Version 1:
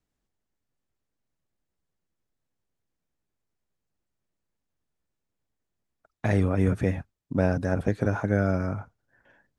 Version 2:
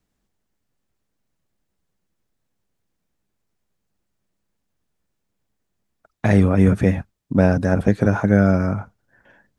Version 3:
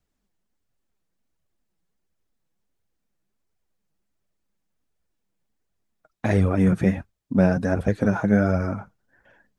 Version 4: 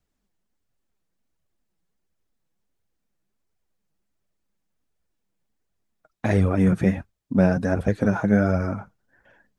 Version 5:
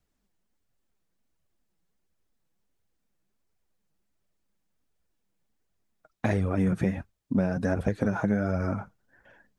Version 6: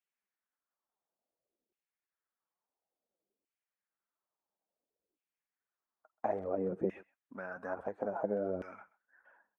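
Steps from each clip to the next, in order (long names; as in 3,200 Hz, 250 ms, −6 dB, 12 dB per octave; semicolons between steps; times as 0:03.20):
parametric band 200 Hz +5.5 dB 0.23 octaves; level +7 dB
flanger 1.4 Hz, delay 1.2 ms, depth 5.3 ms, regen +34%
no processing that can be heard
downward compressor 12 to 1, threshold −21 dBFS, peak gain reduction 10 dB
auto-filter band-pass saw down 0.58 Hz 370–2,800 Hz; graphic EQ with 10 bands 125 Hz −8 dB, 2,000 Hz −4 dB, 4,000 Hz −11 dB; far-end echo of a speakerphone 130 ms, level −21 dB; level +1.5 dB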